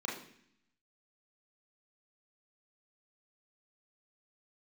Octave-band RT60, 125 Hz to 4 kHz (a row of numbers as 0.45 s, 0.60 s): 0.95 s, 0.90 s, 0.65 s, 0.65 s, 0.80 s, 0.75 s